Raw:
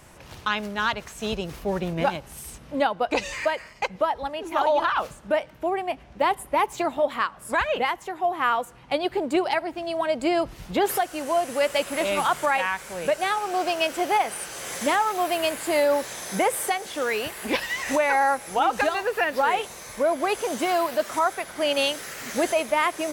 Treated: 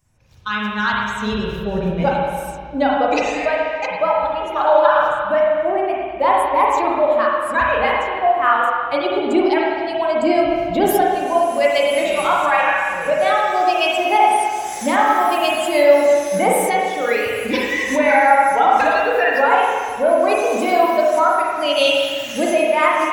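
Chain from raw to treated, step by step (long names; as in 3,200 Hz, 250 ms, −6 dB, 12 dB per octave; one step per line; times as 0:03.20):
spectral dynamics exaggerated over time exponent 1.5
automatic gain control gain up to 7.5 dB
spring reverb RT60 1.9 s, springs 34/38/47 ms, chirp 70 ms, DRR −4 dB
level −1.5 dB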